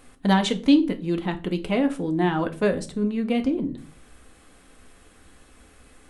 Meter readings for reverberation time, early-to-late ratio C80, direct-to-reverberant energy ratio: 0.40 s, 22.0 dB, 6.0 dB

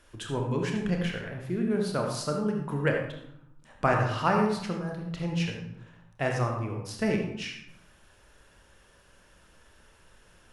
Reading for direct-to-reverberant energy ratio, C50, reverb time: 1.0 dB, 3.0 dB, 0.80 s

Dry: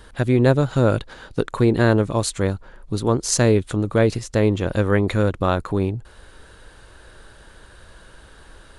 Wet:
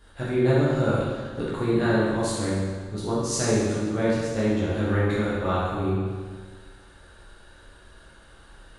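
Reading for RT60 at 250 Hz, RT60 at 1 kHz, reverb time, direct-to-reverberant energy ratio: 1.6 s, 1.6 s, 1.6 s, −9.0 dB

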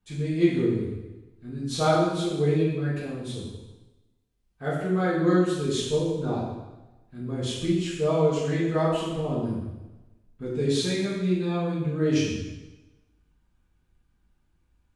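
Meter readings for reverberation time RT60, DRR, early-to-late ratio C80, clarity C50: 1.1 s, −8.5 dB, 3.0 dB, 0.5 dB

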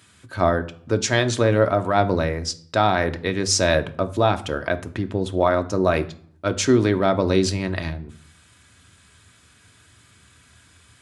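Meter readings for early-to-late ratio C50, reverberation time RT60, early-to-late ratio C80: 16.5 dB, 0.55 s, 21.0 dB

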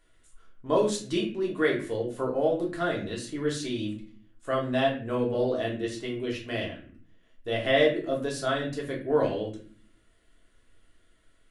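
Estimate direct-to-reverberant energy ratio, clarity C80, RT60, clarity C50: −3.0 dB, 12.5 dB, non-exponential decay, 8.0 dB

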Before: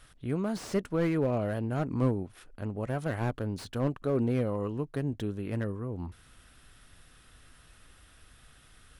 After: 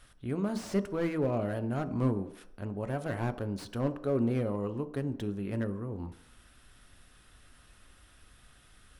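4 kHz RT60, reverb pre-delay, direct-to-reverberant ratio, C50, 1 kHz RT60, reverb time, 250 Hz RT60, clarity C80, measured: 0.70 s, 3 ms, 10.0 dB, 15.0 dB, 0.75 s, 0.70 s, 0.55 s, 17.5 dB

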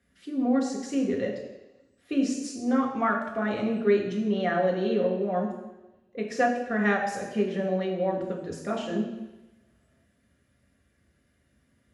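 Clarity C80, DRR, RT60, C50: 8.0 dB, −1.5 dB, 1.0 s, 5.5 dB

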